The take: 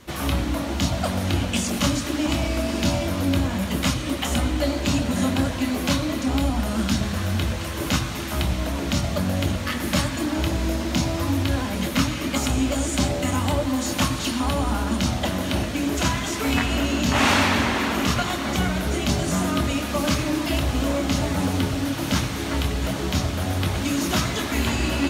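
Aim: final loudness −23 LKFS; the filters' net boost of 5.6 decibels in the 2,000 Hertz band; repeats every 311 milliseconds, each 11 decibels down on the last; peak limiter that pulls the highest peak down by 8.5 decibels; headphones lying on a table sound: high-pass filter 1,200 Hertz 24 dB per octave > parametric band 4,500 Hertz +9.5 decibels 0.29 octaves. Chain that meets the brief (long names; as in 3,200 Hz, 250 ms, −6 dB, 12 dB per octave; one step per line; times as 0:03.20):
parametric band 2,000 Hz +7 dB
brickwall limiter −13 dBFS
high-pass filter 1,200 Hz 24 dB per octave
parametric band 4,500 Hz +9.5 dB 0.29 octaves
repeating echo 311 ms, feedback 28%, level −11 dB
level +2.5 dB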